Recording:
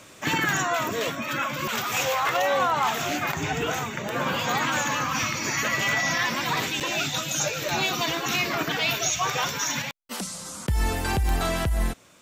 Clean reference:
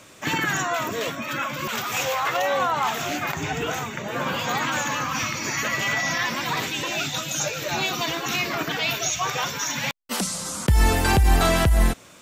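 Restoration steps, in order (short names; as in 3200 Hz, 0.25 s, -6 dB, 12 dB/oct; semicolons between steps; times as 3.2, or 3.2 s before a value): clip repair -15.5 dBFS; de-click; interpolate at 6.8, 7.3 ms; gain correction +6.5 dB, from 9.82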